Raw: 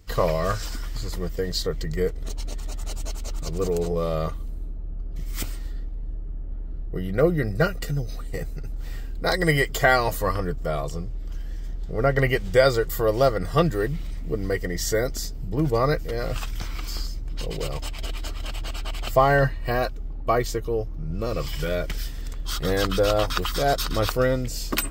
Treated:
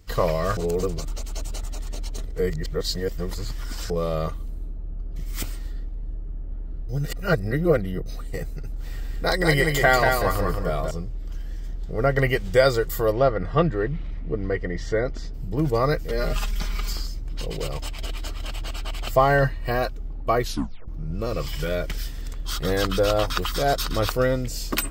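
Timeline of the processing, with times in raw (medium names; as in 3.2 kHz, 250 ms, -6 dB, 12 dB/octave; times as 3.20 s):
0.57–3.90 s: reverse
6.89–8.06 s: reverse
8.80–10.91 s: feedback delay 186 ms, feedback 28%, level -4 dB
13.12–15.34 s: low-pass 2.7 kHz
16.10–16.93 s: comb 4.9 ms, depth 99%
20.42 s: tape stop 0.46 s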